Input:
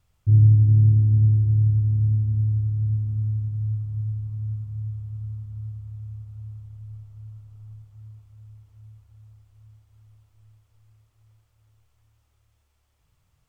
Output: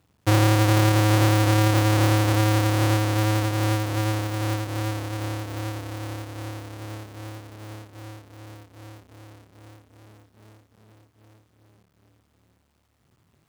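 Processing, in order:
each half-wave held at its own peak
downward compressor 6 to 1, threshold −18 dBFS, peak gain reduction 8.5 dB
high-pass filter 120 Hz
level +3 dB

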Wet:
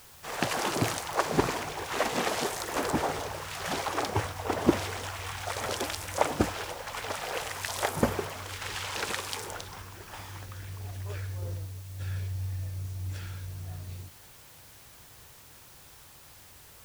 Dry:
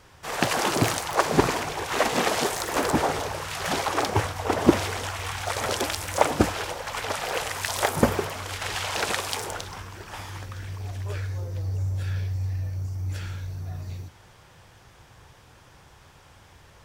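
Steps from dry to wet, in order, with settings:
0:08.49–0:09.51: parametric band 680 Hz −7.5 dB 0.32 octaves
0:11.42–0:12.01: compressor whose output falls as the input rises −31 dBFS, ratio −0.5
bit-depth reduction 8 bits, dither triangular
level −5.5 dB

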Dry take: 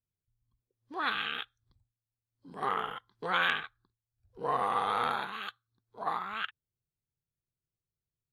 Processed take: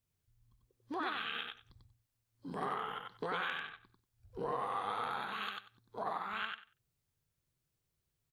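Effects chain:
downward compressor 6 to 1, threshold −44 dBFS, peak gain reduction 18.5 dB
repeating echo 94 ms, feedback 17%, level −3.5 dB
level +6.5 dB

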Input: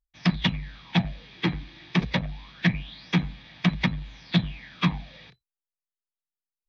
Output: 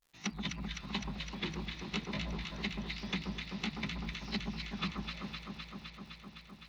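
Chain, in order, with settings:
pitch shifter swept by a sawtooth +3 semitones, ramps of 337 ms
downward compressor, threshold −33 dBFS, peak gain reduction 16 dB
on a send: delay that swaps between a low-pass and a high-pass 128 ms, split 1,300 Hz, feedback 89%, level −3.5 dB
on the sum: surface crackle 230 per second −53 dBFS
level −3 dB

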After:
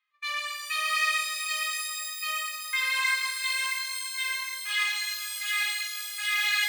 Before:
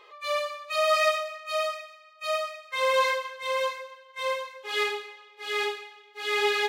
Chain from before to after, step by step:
noise gate −43 dBFS, range −28 dB
in parallel at −0.5 dB: brickwall limiter −23 dBFS, peak gain reduction 10.5 dB
on the sum: four-pole ladder high-pass 1,400 Hz, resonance 40%
reverb with rising layers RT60 3.3 s, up +12 semitones, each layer −2 dB, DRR 4.5 dB
level +2.5 dB

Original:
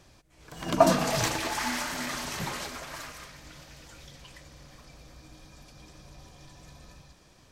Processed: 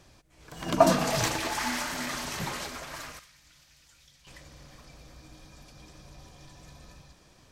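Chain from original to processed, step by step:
0:03.19–0:04.27: guitar amp tone stack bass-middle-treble 5-5-5

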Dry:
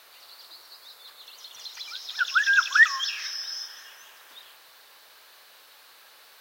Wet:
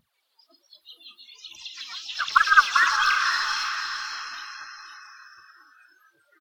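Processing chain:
phase shifter 1.3 Hz, delay 4.5 ms, feedback 74%
pitch-shifted copies added −4 semitones −2 dB
on a send: feedback delay with all-pass diffusion 531 ms, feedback 44%, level −4.5 dB
on the sum: noise reduction from a noise print of the clip's start 26 dB
level −3.5 dB

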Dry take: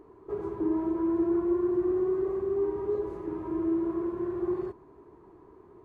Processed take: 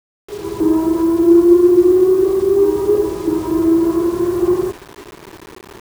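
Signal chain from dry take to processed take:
0:01.23–0:03.40: dynamic equaliser 340 Hz, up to +7 dB, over −39 dBFS, Q 4.8
automatic gain control gain up to 15 dB
bit-depth reduction 6 bits, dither none

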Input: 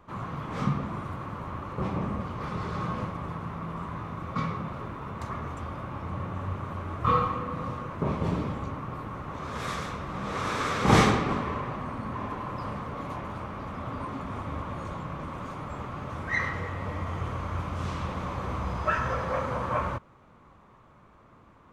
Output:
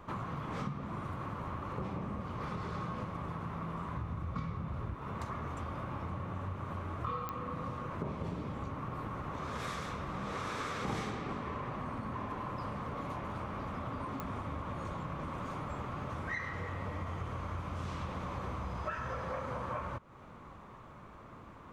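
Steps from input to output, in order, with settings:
0:03.97–0:04.95: parametric band 61 Hz +15 dB 2 octaves
downward compressor 5 to 1, threshold −41 dBFS, peak gain reduction 23.5 dB
digital clicks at 0:07.29/0:14.20, −27 dBFS
level +4 dB

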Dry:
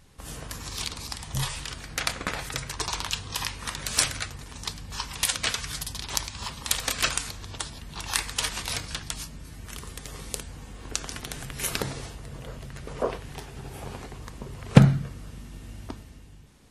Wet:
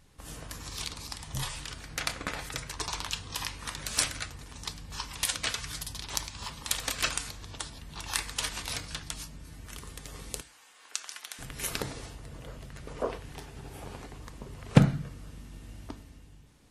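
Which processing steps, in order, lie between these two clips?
0:10.41–0:11.39: high-pass filter 1,100 Hz 12 dB per octave
feedback delay network reverb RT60 0.31 s, low-frequency decay 1.45×, high-frequency decay 0.85×, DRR 15 dB
level −4.5 dB

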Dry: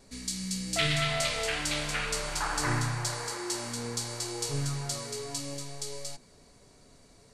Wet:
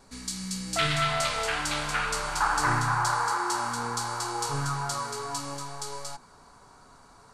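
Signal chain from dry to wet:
flat-topped bell 1,100 Hz +8.5 dB 1.2 octaves, from 0:02.87 +15 dB

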